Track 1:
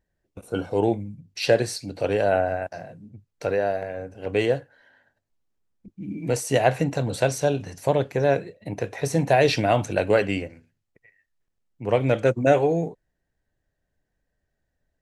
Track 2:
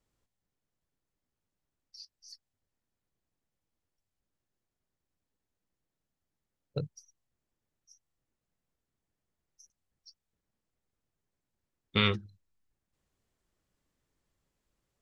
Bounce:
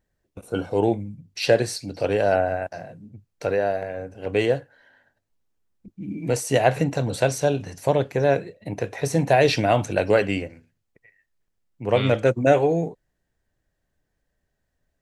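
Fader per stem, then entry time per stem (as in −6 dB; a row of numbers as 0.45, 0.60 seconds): +1.0, −4.0 decibels; 0.00, 0.00 seconds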